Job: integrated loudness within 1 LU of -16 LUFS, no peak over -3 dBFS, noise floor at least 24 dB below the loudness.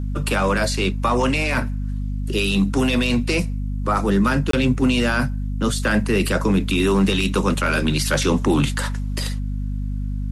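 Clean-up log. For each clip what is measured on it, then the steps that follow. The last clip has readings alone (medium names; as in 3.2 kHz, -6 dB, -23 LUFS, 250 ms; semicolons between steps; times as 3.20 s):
dropouts 1; longest dropout 23 ms; hum 50 Hz; highest harmonic 250 Hz; hum level -22 dBFS; loudness -20.5 LUFS; peak level -6.0 dBFS; loudness target -16.0 LUFS
-> interpolate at 4.51 s, 23 ms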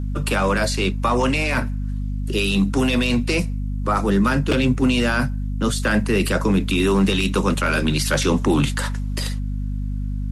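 dropouts 0; hum 50 Hz; highest harmonic 250 Hz; hum level -22 dBFS
-> de-hum 50 Hz, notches 5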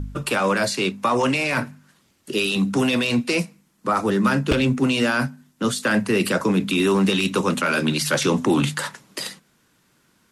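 hum not found; loudness -21.5 LUFS; peak level -6.0 dBFS; loudness target -16.0 LUFS
-> trim +5.5 dB; peak limiter -3 dBFS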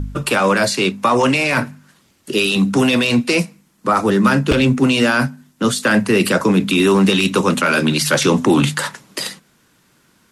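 loudness -16.0 LUFS; peak level -3.0 dBFS; noise floor -57 dBFS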